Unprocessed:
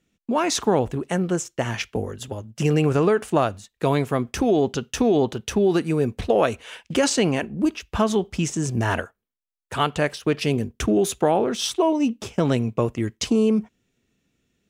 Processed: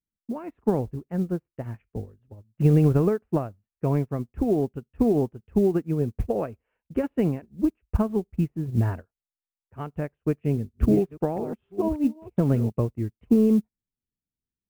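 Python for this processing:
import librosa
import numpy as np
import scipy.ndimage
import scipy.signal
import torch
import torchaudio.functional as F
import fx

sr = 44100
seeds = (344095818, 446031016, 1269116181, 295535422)

y = fx.reverse_delay(x, sr, ms=660, wet_db=-8.0, at=(10.06, 12.72))
y = scipy.signal.sosfilt(scipy.signal.butter(8, 2700.0, 'lowpass', fs=sr, output='sos'), y)
y = fx.tilt_eq(y, sr, slope=-4.0)
y = fx.mod_noise(y, sr, seeds[0], snr_db=33)
y = fx.upward_expand(y, sr, threshold_db=-28.0, expansion=2.5)
y = y * librosa.db_to_amplitude(-5.0)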